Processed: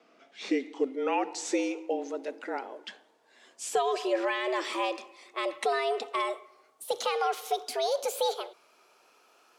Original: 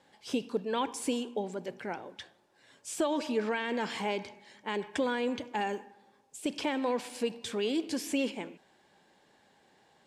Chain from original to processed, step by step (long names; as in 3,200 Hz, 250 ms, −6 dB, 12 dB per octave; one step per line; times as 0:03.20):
gliding playback speed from 64% → 146%
frequency shifter +130 Hz
level +2.5 dB